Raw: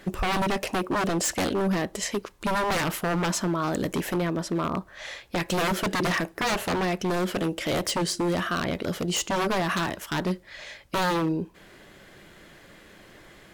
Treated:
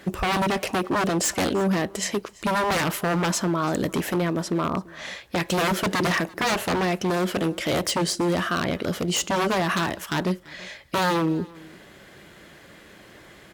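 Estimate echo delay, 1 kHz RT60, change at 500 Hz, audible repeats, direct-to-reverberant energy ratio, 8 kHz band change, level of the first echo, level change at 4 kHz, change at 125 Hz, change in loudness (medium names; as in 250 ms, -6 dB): 338 ms, no reverb, +2.5 dB, 1, no reverb, +2.5 dB, -23.0 dB, +2.5 dB, +2.5 dB, +2.5 dB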